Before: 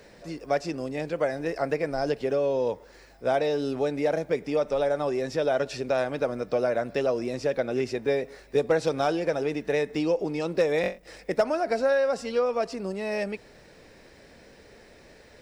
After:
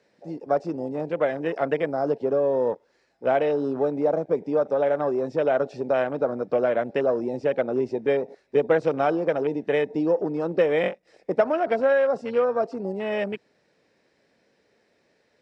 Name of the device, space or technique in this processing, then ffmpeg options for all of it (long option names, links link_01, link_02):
over-cleaned archive recording: -af "highpass=140,lowpass=7400,afwtdn=0.0158,volume=3dB"